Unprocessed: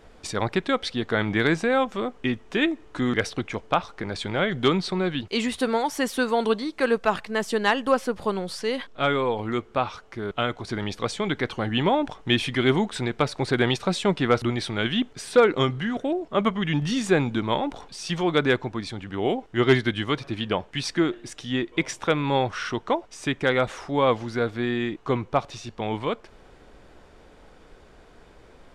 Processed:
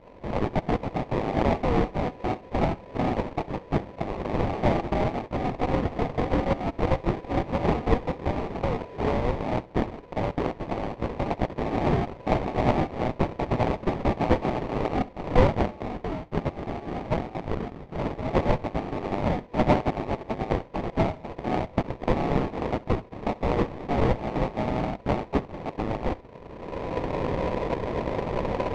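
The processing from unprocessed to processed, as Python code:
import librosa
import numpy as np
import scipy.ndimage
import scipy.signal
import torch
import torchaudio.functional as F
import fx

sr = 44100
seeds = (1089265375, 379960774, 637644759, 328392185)

y = fx.recorder_agc(x, sr, target_db=-16.5, rise_db_per_s=27.0, max_gain_db=30)
y = fx.highpass(y, sr, hz=620.0, slope=6, at=(15.62, 18.29), fade=0.02)
y = y * np.sin(2.0 * np.pi * 990.0 * np.arange(len(y)) / sr)
y = fx.sample_hold(y, sr, seeds[0], rate_hz=1500.0, jitter_pct=20)
y = fx.spacing_loss(y, sr, db_at_10k=34)
y = fx.echo_feedback(y, sr, ms=66, feedback_pct=27, wet_db=-21.0)
y = F.gain(torch.from_numpy(y), 3.0).numpy()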